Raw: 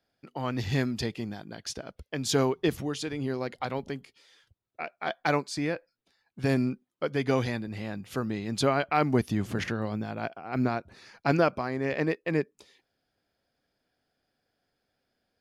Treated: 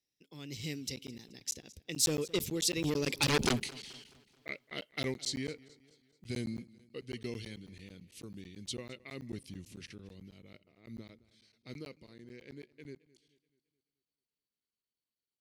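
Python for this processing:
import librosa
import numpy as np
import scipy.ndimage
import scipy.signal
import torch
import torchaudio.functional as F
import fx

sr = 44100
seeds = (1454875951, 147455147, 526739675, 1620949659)

p1 = fx.doppler_pass(x, sr, speed_mps=39, closest_m=3.8, pass_at_s=3.42)
p2 = fx.band_shelf(p1, sr, hz=1000.0, db=-14.5, octaves=1.7)
p3 = fx.fold_sine(p2, sr, drive_db=16, ceiling_db=-25.0)
p4 = p2 + F.gain(torch.from_numpy(p3), -8.0).numpy()
p5 = fx.high_shelf(p4, sr, hz=2800.0, db=12.0)
p6 = fx.buffer_crackle(p5, sr, first_s=0.96, period_s=0.11, block=512, kind='zero')
p7 = fx.echo_warbled(p6, sr, ms=215, feedback_pct=47, rate_hz=2.8, cents=77, wet_db=-21.0)
y = F.gain(torch.from_numpy(p7), 3.5).numpy()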